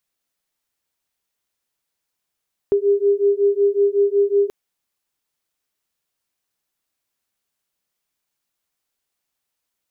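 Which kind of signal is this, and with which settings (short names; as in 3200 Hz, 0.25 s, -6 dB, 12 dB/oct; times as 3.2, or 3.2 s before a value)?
beating tones 400 Hz, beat 5.4 Hz, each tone -17 dBFS 1.78 s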